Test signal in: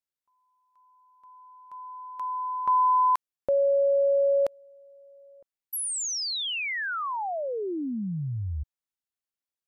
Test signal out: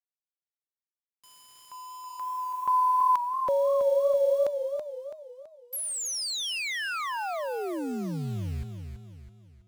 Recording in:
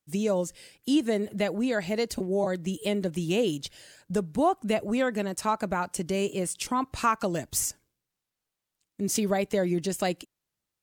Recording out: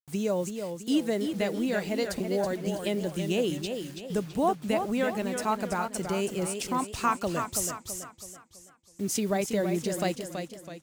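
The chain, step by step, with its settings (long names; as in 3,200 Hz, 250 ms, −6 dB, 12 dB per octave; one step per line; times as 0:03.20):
bit reduction 8 bits
feedback echo with a swinging delay time 328 ms, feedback 43%, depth 73 cents, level −7 dB
level −2 dB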